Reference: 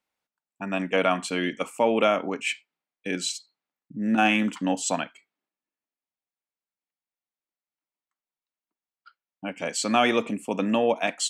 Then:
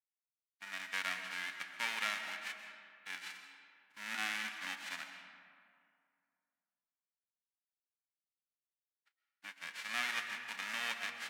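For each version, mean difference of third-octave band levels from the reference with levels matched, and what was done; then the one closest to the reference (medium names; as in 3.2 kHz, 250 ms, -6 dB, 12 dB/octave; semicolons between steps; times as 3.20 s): 15.5 dB: formants flattened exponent 0.1; gate -39 dBFS, range -9 dB; band-pass filter 1.9 kHz, Q 2; algorithmic reverb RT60 2.3 s, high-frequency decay 0.55×, pre-delay 90 ms, DRR 6.5 dB; trim -7 dB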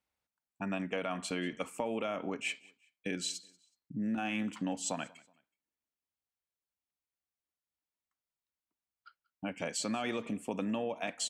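4.0 dB: peaking EQ 65 Hz +14.5 dB 1.6 oct; peak limiter -12 dBFS, peak gain reduction 4.5 dB; compression 4:1, threshold -28 dBFS, peak gain reduction 9.5 dB; on a send: feedback delay 186 ms, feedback 35%, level -24 dB; on the sum: trim -4.5 dB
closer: second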